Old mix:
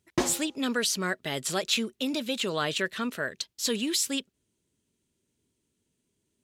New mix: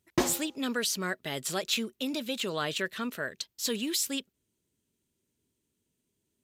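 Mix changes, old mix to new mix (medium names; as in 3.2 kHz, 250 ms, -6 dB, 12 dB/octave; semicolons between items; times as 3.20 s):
speech -3.0 dB; master: add peaking EQ 14 kHz +12.5 dB 0.2 oct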